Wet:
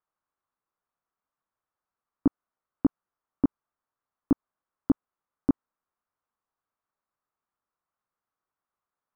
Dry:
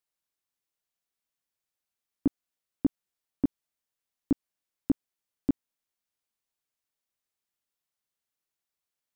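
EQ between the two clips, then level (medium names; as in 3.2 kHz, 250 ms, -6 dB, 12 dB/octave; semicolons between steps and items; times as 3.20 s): resonant low-pass 1.2 kHz, resonance Q 2.7; +2.5 dB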